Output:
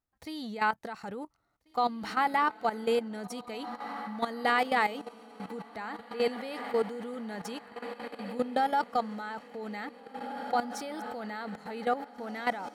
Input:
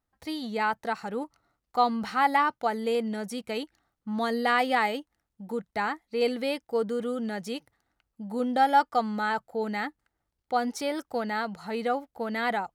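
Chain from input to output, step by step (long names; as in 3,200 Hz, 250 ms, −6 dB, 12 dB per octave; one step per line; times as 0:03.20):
feedback delay with all-pass diffusion 1,880 ms, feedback 55%, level −12 dB
output level in coarse steps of 13 dB
level +1 dB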